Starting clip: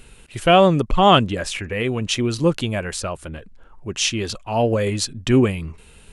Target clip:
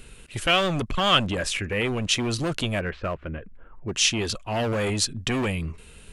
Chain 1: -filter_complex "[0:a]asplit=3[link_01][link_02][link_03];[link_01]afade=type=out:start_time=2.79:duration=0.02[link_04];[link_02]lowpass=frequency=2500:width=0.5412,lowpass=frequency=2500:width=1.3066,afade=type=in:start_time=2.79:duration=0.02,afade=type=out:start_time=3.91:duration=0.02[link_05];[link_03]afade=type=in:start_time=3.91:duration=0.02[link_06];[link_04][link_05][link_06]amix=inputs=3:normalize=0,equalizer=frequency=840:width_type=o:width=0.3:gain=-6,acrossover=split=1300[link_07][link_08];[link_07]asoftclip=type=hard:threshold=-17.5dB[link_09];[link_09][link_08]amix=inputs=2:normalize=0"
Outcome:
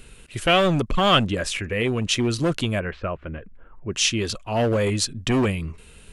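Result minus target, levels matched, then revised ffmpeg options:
hard clipping: distortion −4 dB
-filter_complex "[0:a]asplit=3[link_01][link_02][link_03];[link_01]afade=type=out:start_time=2.79:duration=0.02[link_04];[link_02]lowpass=frequency=2500:width=0.5412,lowpass=frequency=2500:width=1.3066,afade=type=in:start_time=2.79:duration=0.02,afade=type=out:start_time=3.91:duration=0.02[link_05];[link_03]afade=type=in:start_time=3.91:duration=0.02[link_06];[link_04][link_05][link_06]amix=inputs=3:normalize=0,equalizer=frequency=840:width_type=o:width=0.3:gain=-6,acrossover=split=1300[link_07][link_08];[link_07]asoftclip=type=hard:threshold=-24dB[link_09];[link_09][link_08]amix=inputs=2:normalize=0"

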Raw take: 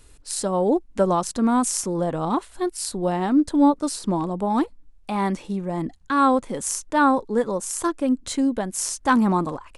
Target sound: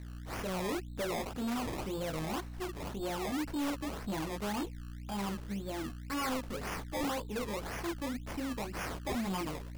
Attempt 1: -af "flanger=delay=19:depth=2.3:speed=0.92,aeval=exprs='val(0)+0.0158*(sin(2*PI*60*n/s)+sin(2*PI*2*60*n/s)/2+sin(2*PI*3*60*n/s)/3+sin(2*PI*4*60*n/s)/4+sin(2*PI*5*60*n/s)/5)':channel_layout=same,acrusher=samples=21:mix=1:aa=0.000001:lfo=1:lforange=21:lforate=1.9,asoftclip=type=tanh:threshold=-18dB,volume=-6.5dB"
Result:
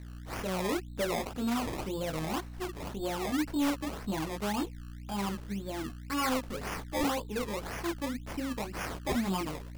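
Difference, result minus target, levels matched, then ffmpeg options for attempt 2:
soft clipping: distortion −5 dB
-af "flanger=delay=19:depth=2.3:speed=0.92,aeval=exprs='val(0)+0.0158*(sin(2*PI*60*n/s)+sin(2*PI*2*60*n/s)/2+sin(2*PI*3*60*n/s)/3+sin(2*PI*4*60*n/s)/4+sin(2*PI*5*60*n/s)/5)':channel_layout=same,acrusher=samples=21:mix=1:aa=0.000001:lfo=1:lforange=21:lforate=1.9,asoftclip=type=tanh:threshold=-25dB,volume=-6.5dB"

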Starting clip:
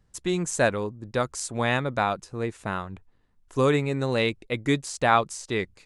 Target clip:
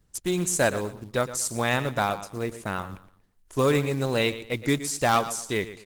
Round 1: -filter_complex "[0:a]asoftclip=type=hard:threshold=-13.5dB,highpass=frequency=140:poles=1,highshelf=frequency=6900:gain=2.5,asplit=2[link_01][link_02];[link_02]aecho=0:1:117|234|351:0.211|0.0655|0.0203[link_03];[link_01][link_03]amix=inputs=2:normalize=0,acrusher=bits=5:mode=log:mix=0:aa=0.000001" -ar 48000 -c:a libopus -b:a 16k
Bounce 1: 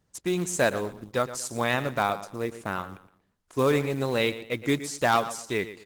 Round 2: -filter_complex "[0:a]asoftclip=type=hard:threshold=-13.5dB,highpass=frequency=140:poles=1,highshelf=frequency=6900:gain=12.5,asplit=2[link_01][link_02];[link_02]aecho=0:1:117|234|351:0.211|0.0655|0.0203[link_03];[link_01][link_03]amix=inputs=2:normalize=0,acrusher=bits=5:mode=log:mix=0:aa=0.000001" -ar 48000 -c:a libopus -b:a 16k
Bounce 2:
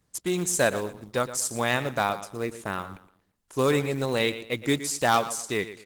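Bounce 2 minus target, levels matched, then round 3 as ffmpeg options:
125 Hz band −2.5 dB
-filter_complex "[0:a]asoftclip=type=hard:threshold=-13.5dB,highshelf=frequency=6900:gain=12.5,asplit=2[link_01][link_02];[link_02]aecho=0:1:117|234|351:0.211|0.0655|0.0203[link_03];[link_01][link_03]amix=inputs=2:normalize=0,acrusher=bits=5:mode=log:mix=0:aa=0.000001" -ar 48000 -c:a libopus -b:a 16k

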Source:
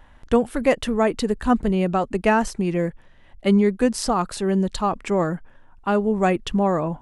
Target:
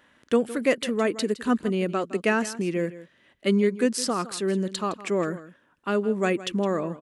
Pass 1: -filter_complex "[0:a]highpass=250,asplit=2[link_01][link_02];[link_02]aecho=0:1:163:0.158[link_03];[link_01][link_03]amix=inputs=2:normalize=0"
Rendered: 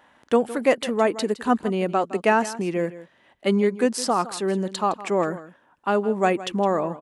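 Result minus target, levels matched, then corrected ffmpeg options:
1,000 Hz band +5.5 dB
-filter_complex "[0:a]highpass=250,equalizer=frequency=820:width_type=o:width=0.79:gain=-12,asplit=2[link_01][link_02];[link_02]aecho=0:1:163:0.158[link_03];[link_01][link_03]amix=inputs=2:normalize=0"

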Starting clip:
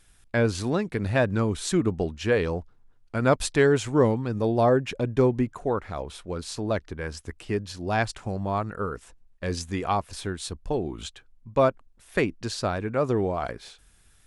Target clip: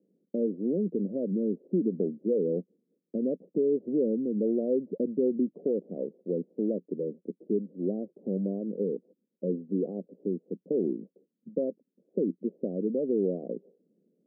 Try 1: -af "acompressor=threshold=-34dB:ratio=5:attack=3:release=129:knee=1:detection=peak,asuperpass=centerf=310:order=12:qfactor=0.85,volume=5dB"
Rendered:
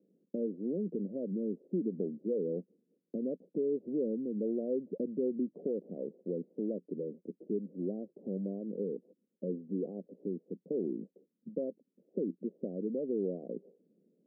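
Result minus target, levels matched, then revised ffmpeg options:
downward compressor: peak gain reduction +6.5 dB
-af "acompressor=threshold=-26dB:ratio=5:attack=3:release=129:knee=1:detection=peak,asuperpass=centerf=310:order=12:qfactor=0.85,volume=5dB"

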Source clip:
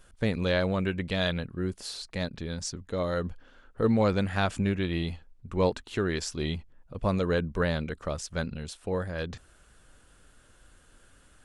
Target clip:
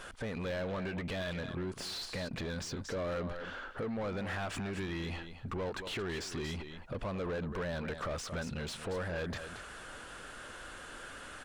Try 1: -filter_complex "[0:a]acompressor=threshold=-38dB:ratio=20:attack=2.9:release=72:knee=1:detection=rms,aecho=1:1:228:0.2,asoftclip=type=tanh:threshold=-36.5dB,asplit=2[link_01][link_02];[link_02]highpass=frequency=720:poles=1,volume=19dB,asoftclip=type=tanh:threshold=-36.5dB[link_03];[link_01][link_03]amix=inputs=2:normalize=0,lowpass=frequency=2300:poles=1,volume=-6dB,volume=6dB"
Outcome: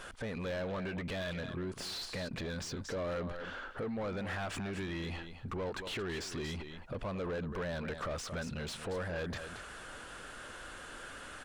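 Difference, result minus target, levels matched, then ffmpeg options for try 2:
soft clipping: distortion +18 dB
-filter_complex "[0:a]acompressor=threshold=-38dB:ratio=20:attack=2.9:release=72:knee=1:detection=rms,aecho=1:1:228:0.2,asoftclip=type=tanh:threshold=-26dB,asplit=2[link_01][link_02];[link_02]highpass=frequency=720:poles=1,volume=19dB,asoftclip=type=tanh:threshold=-36.5dB[link_03];[link_01][link_03]amix=inputs=2:normalize=0,lowpass=frequency=2300:poles=1,volume=-6dB,volume=6dB"

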